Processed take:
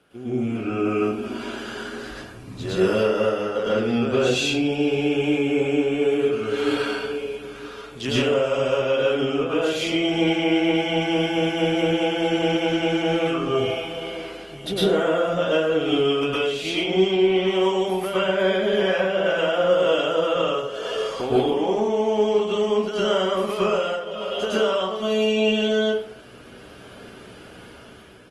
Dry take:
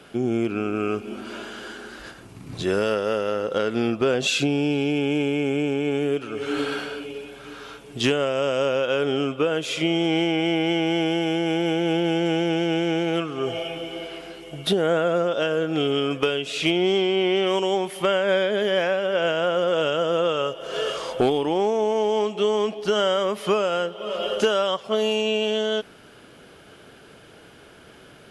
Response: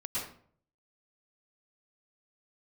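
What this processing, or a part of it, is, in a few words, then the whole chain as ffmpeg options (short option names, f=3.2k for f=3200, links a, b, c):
speakerphone in a meeting room: -filter_complex "[1:a]atrim=start_sample=2205[a];[0:a][a]afir=irnorm=-1:irlink=0,asplit=2[b][c];[c]adelay=140,highpass=300,lowpass=3.4k,asoftclip=type=hard:threshold=-13.5dB,volume=-20dB[d];[b][d]amix=inputs=2:normalize=0,dynaudnorm=f=120:g=11:m=9dB,volume=-7.5dB" -ar 48000 -c:a libopus -b:a 24k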